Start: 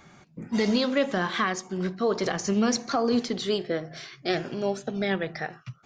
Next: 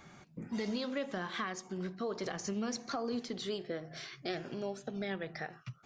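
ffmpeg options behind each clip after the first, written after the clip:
ffmpeg -i in.wav -af "acompressor=threshold=-38dB:ratio=2,volume=-3dB" out.wav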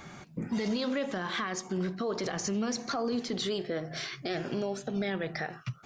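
ffmpeg -i in.wav -af "alimiter=level_in=8dB:limit=-24dB:level=0:latency=1:release=23,volume=-8dB,volume=8.5dB" out.wav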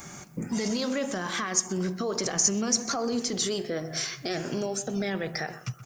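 ffmpeg -i in.wav -filter_complex "[0:a]aexciter=amount=5.9:drive=4.9:freq=5500,asplit=2[link_01][link_02];[link_02]adelay=126,lowpass=frequency=1800:poles=1,volume=-13.5dB,asplit=2[link_03][link_04];[link_04]adelay=126,lowpass=frequency=1800:poles=1,volume=0.35,asplit=2[link_05][link_06];[link_06]adelay=126,lowpass=frequency=1800:poles=1,volume=0.35[link_07];[link_01][link_03][link_05][link_07]amix=inputs=4:normalize=0,volume=2dB" out.wav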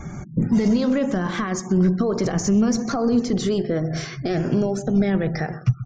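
ffmpeg -i in.wav -af "afftfilt=real='re*gte(hypot(re,im),0.00501)':imag='im*gte(hypot(re,im),0.00501)':win_size=1024:overlap=0.75,aeval=exprs='0.335*sin(PI/2*1.41*val(0)/0.335)':channel_layout=same,aemphasis=mode=reproduction:type=riaa,volume=-2.5dB" out.wav

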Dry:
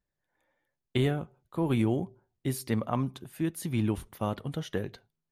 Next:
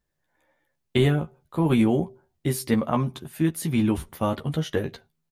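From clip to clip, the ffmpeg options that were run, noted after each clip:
ffmpeg -i in.wav -filter_complex "[0:a]asplit=2[link_01][link_02];[link_02]adelay=13,volume=-5dB[link_03];[link_01][link_03]amix=inputs=2:normalize=0,volume=5.5dB" out.wav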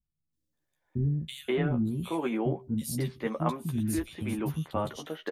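ffmpeg -i in.wav -filter_complex "[0:a]acrossover=split=260|3000[link_01][link_02][link_03];[link_03]adelay=330[link_04];[link_02]adelay=530[link_05];[link_01][link_05][link_04]amix=inputs=3:normalize=0,volume=-4.5dB" out.wav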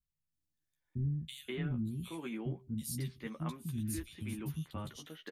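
ffmpeg -i in.wav -af "equalizer=frequency=650:width=0.62:gain=-14.5,volume=-4dB" out.wav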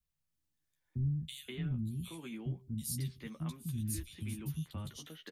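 ffmpeg -i in.wav -filter_complex "[0:a]acrossover=split=190|3000[link_01][link_02][link_03];[link_02]acompressor=threshold=-58dB:ratio=2[link_04];[link_01][link_04][link_03]amix=inputs=3:normalize=0,volume=2.5dB" out.wav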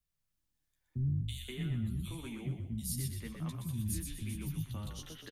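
ffmpeg -i in.wav -filter_complex "[0:a]asplit=6[link_01][link_02][link_03][link_04][link_05][link_06];[link_02]adelay=123,afreqshift=-37,volume=-5dB[link_07];[link_03]adelay=246,afreqshift=-74,volume=-13.4dB[link_08];[link_04]adelay=369,afreqshift=-111,volume=-21.8dB[link_09];[link_05]adelay=492,afreqshift=-148,volume=-30.2dB[link_10];[link_06]adelay=615,afreqshift=-185,volume=-38.6dB[link_11];[link_01][link_07][link_08][link_09][link_10][link_11]amix=inputs=6:normalize=0" out.wav

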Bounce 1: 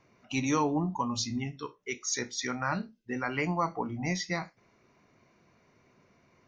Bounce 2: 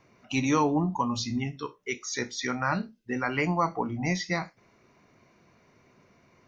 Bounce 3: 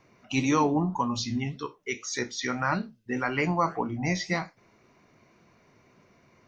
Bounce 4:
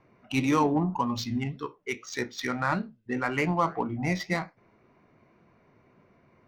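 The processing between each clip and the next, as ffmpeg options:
ffmpeg -i in.wav -filter_complex "[0:a]acrossover=split=4900[link_01][link_02];[link_02]acompressor=threshold=-44dB:ratio=4:attack=1:release=60[link_03];[link_01][link_03]amix=inputs=2:normalize=0,volume=3.5dB" out.wav
ffmpeg -i in.wav -af "flanger=delay=2.6:depth=7:regen=86:speed=1.8:shape=sinusoidal,volume=5dB" out.wav
ffmpeg -i in.wav -af "adynamicsmooth=sensitivity=4.5:basefreq=2600" out.wav

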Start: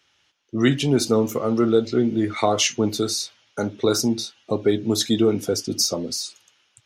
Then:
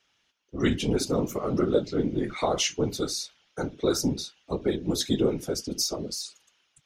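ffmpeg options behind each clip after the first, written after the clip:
ffmpeg -i in.wav -af "afftfilt=real='hypot(re,im)*cos(2*PI*random(0))':imag='hypot(re,im)*sin(2*PI*random(1))':win_size=512:overlap=0.75" out.wav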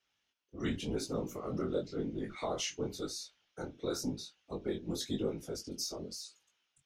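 ffmpeg -i in.wav -af "flanger=delay=18:depth=6:speed=0.93,volume=-7.5dB" out.wav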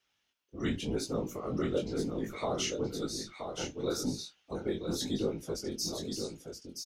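ffmpeg -i in.wav -af "aecho=1:1:974:0.473,volume=2.5dB" out.wav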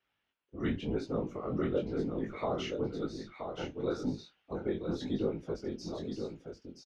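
ffmpeg -i in.wav -af "lowpass=2400" out.wav

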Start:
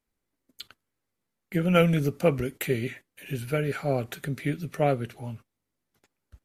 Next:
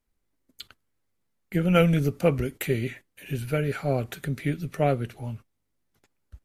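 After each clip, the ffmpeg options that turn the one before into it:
ffmpeg -i in.wav -af "lowshelf=frequency=76:gain=10" out.wav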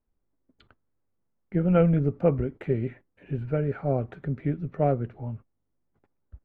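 ffmpeg -i in.wav -af "lowpass=1100" out.wav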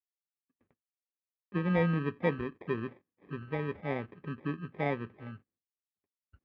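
ffmpeg -i in.wav -af "acrusher=samples=31:mix=1:aa=0.000001,agate=range=-33dB:threshold=-55dB:ratio=3:detection=peak,highpass=120,equalizer=frequency=130:width_type=q:width=4:gain=-7,equalizer=frequency=650:width_type=q:width=4:gain=-5,equalizer=frequency=940:width_type=q:width=4:gain=-7,lowpass=frequency=2400:width=0.5412,lowpass=frequency=2400:width=1.3066,volume=-5dB" out.wav

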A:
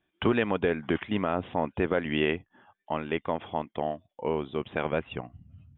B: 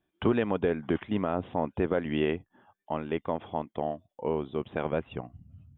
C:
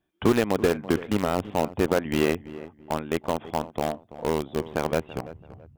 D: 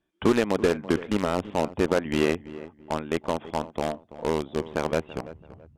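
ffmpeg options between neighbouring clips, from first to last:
ffmpeg -i in.wav -af "equalizer=frequency=2400:width_type=o:width=1.9:gain=-7" out.wav
ffmpeg -i in.wav -filter_complex "[0:a]asplit=2[link_01][link_02];[link_02]acrusher=bits=3:mix=0:aa=0.000001,volume=-5.5dB[link_03];[link_01][link_03]amix=inputs=2:normalize=0,asplit=2[link_04][link_05];[link_05]adelay=333,lowpass=frequency=1700:poles=1,volume=-15.5dB,asplit=2[link_06][link_07];[link_07]adelay=333,lowpass=frequency=1700:poles=1,volume=0.32,asplit=2[link_08][link_09];[link_09]adelay=333,lowpass=frequency=1700:poles=1,volume=0.32[link_10];[link_04][link_06][link_08][link_10]amix=inputs=4:normalize=0,volume=1dB" out.wav
ffmpeg -i in.wav -af "lowpass=8900,equalizer=frequency=110:width_type=o:width=0.59:gain=-5.5,bandreject=frequency=740:width=12" out.wav

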